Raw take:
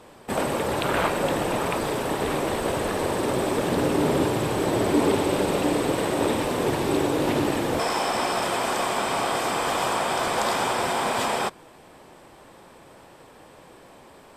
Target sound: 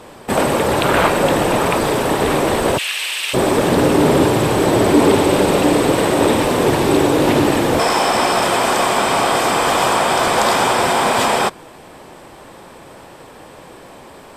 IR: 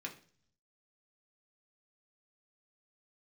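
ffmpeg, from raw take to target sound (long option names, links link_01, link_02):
-filter_complex "[0:a]asplit=3[link_01][link_02][link_03];[link_01]afade=type=out:start_time=2.77:duration=0.02[link_04];[link_02]highpass=frequency=2700:width_type=q:width=3.4,afade=type=in:start_time=2.77:duration=0.02,afade=type=out:start_time=3.33:duration=0.02[link_05];[link_03]afade=type=in:start_time=3.33:duration=0.02[link_06];[link_04][link_05][link_06]amix=inputs=3:normalize=0,asplit=2[link_07][link_08];[link_08]asoftclip=type=tanh:threshold=-18dB,volume=-8.5dB[link_09];[link_07][link_09]amix=inputs=2:normalize=0,volume=7dB"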